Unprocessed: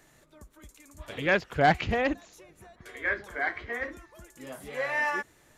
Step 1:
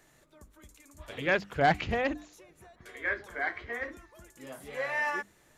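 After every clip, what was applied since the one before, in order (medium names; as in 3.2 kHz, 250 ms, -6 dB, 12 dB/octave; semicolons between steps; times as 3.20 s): hum notches 50/100/150/200/250/300 Hz; trim -2.5 dB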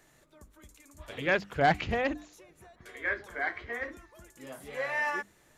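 no audible change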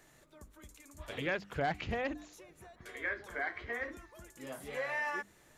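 compression 2.5:1, threshold -35 dBFS, peak gain reduction 10.5 dB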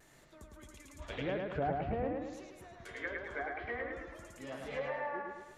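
low-pass that closes with the level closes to 890 Hz, closed at -32.5 dBFS; bucket-brigade echo 107 ms, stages 4096, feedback 50%, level -3 dB; vibrato 0.91 Hz 33 cents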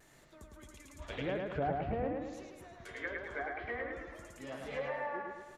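delay 383 ms -21 dB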